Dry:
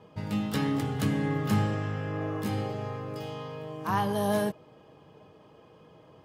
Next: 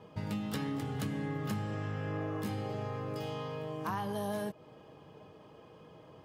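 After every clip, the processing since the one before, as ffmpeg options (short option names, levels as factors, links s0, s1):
-af "acompressor=threshold=0.0224:ratio=6"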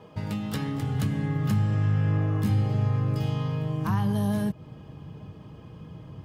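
-af "asubboost=boost=8:cutoff=180,volume=1.68"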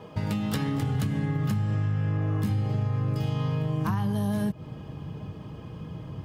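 -af "acompressor=threshold=0.0398:ratio=6,volume=1.68"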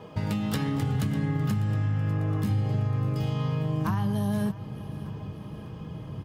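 -af "aecho=1:1:598|1196|1794|2392|2990:0.141|0.0777|0.0427|0.0235|0.0129"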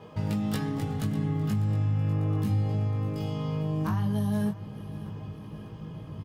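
-filter_complex "[0:a]asplit=2[s0][s1];[s1]adelay=19,volume=0.668[s2];[s0][s2]amix=inputs=2:normalize=0,volume=0.631"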